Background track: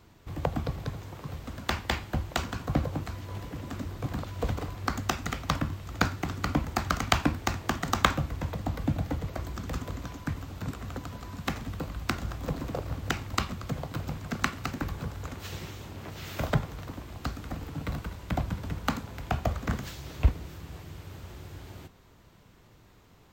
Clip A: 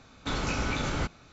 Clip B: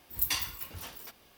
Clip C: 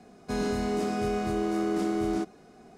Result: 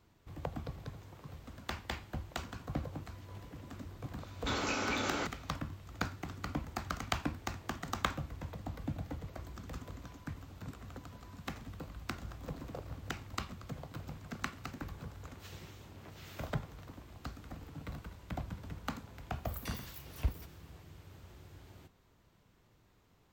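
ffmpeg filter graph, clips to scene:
-filter_complex "[0:a]volume=-10.5dB[a];[1:a]highpass=f=230:w=0.5412,highpass=f=230:w=1.3066[b];[2:a]acompressor=threshold=-33dB:ratio=6:attack=3.2:release=140:knee=1:detection=peak[c];[b]atrim=end=1.32,asetpts=PTS-STARTPTS,volume=-2.5dB,afade=t=in:d=0.004:c=hsin,afade=t=out:st=1.316:d=0.004:c=hsin,adelay=4200[d];[c]atrim=end=1.37,asetpts=PTS-STARTPTS,volume=-9.5dB,afade=t=in:d=0.004:c=hsin,afade=t=out:st=1.366:d=0.004:c=hsin,adelay=19350[e];[a][d][e]amix=inputs=3:normalize=0"

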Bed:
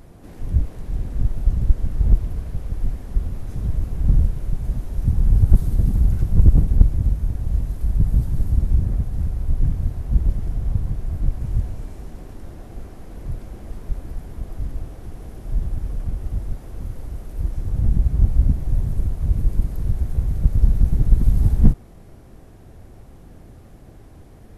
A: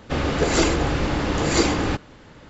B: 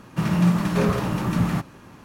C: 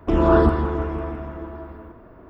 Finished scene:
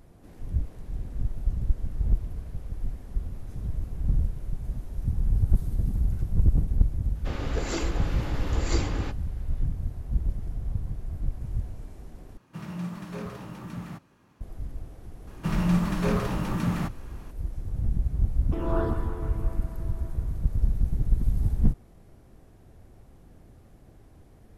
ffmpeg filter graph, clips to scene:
-filter_complex "[2:a]asplit=2[a][b];[0:a]volume=-8.5dB[c];[1:a]asplit=2[d][e];[e]adelay=18,volume=-12dB[f];[d][f]amix=inputs=2:normalize=0[g];[c]asplit=2[h][i];[h]atrim=end=12.374[j];[a]atrim=end=2.04,asetpts=PTS-STARTPTS,volume=-15.5dB[k];[i]atrim=start=14.406[l];[g]atrim=end=2.49,asetpts=PTS-STARTPTS,volume=-12.5dB,afade=t=in:d=0.004:c=hsin,afade=t=out:st=2.486:d=0.004:c=hsin,adelay=7150[m];[b]atrim=end=2.04,asetpts=PTS-STARTPTS,volume=-5dB,afade=t=in:d=0.004:c=hsin,afade=t=out:st=2.036:d=0.004:c=hsin,adelay=15270[n];[3:a]atrim=end=2.29,asetpts=PTS-STARTPTS,volume=-13dB,afade=t=in:d=0.004:c=hsin,afade=t=out:st=2.286:d=0.004:c=hsin,adelay=813204S[o];[j][k]acrossfade=d=0.004:c1=hsin:c2=hsin[p];[p][l]acrossfade=d=0.004:c1=hsin:c2=hsin[q];[q][m][n][o]amix=inputs=4:normalize=0"

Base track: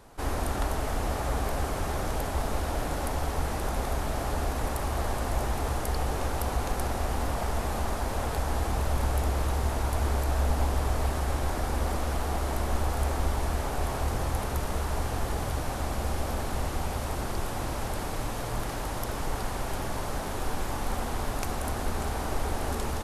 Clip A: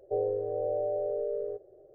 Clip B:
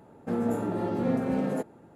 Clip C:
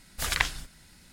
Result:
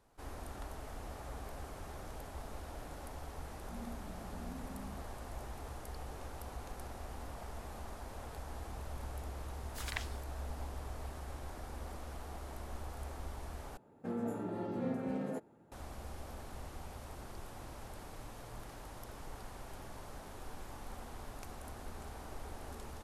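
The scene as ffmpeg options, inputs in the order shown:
-filter_complex "[2:a]asplit=2[a][b];[0:a]volume=-16.5dB[c];[a]asuperpass=centerf=190:order=4:qfactor=1.8[d];[c]asplit=2[e][f];[e]atrim=end=13.774[g];[b]atrim=end=1.95,asetpts=PTS-STARTPTS,volume=-10dB[h];[f]atrim=start=15.716[i];[d]atrim=end=1.95,asetpts=PTS-STARTPTS,volume=-17.5dB,afade=t=in:d=0.004:c=hsin,afade=t=out:st=1.946:d=0.004:c=hsin,adelay=150381S[j];[3:a]atrim=end=1.12,asetpts=PTS-STARTPTS,volume=-15dB,afade=t=in:d=0.004:c=hsin,afade=t=out:st=1.116:d=0.004:c=hsin,adelay=9560[k];[g][h]acrossfade=d=0.004:c1=hsin:c2=hsin[l];[l][i]acrossfade=d=0.004:c1=hsin:c2=hsin[m];[m][j][k]amix=inputs=3:normalize=0"

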